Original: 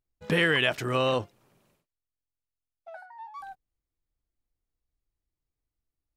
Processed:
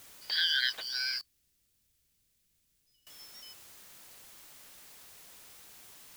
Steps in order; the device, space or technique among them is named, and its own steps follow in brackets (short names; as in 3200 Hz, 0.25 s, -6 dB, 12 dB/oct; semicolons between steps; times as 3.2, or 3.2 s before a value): split-band scrambled radio (four-band scrambler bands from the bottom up 4321; BPF 350–2900 Hz; white noise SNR 14 dB); 1.21–3.07 passive tone stack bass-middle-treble 10-0-1